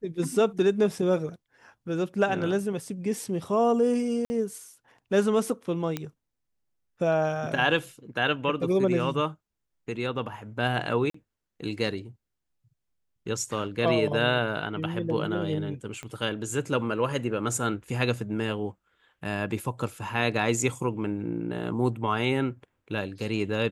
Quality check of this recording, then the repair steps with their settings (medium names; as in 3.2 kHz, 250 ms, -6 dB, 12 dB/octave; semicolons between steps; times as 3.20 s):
4.25–4.30 s: dropout 50 ms
5.97 s: pop -15 dBFS
11.10–11.14 s: dropout 44 ms
16.03 s: pop -23 dBFS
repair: de-click; interpolate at 4.25 s, 50 ms; interpolate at 11.10 s, 44 ms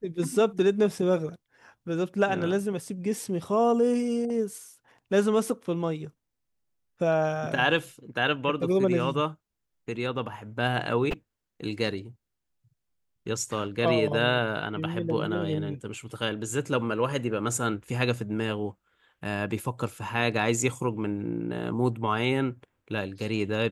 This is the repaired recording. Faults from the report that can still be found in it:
16.03 s: pop